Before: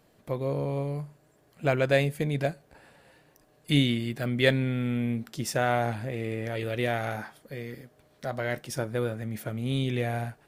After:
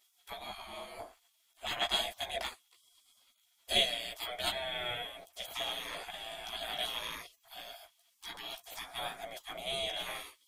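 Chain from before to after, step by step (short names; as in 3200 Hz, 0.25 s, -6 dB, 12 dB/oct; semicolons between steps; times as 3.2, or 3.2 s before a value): chorus voices 2, 0.21 Hz, delay 15 ms, depth 4.3 ms; spectral gate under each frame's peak -25 dB weak; small resonant body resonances 680/3300 Hz, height 15 dB, ringing for 30 ms; gain +7.5 dB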